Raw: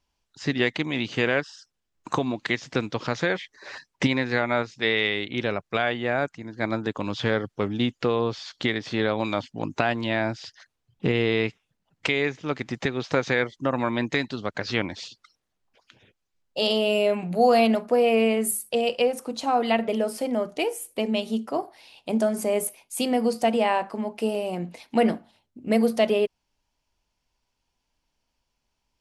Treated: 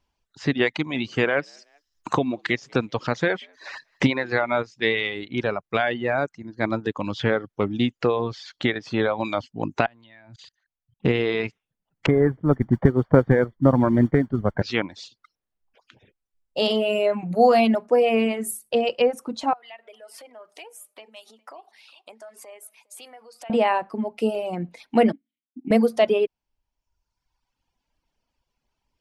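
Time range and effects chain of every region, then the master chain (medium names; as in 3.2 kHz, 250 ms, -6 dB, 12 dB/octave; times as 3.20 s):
0.74–4.49 s: frequency-shifting echo 190 ms, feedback 35%, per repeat +73 Hz, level -23 dB + tape noise reduction on one side only encoder only
9.86–11.05 s: level held to a coarse grid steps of 22 dB + Butterworth band-stop 5.3 kHz, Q 5.6 + peaking EQ 390 Hz -6 dB 0.92 oct
12.06–14.62 s: tilt EQ -4 dB/octave + modulation noise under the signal 16 dB + Savitzky-Golay filter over 41 samples
19.53–23.50 s: compression, threshold -35 dBFS + high-pass 850 Hz + delay 409 ms -17.5 dB
25.12–25.71 s: vowel filter i + transient shaper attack +9 dB, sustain -8 dB
whole clip: reverb removal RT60 1.2 s; treble shelf 3.8 kHz -8 dB; trim +3.5 dB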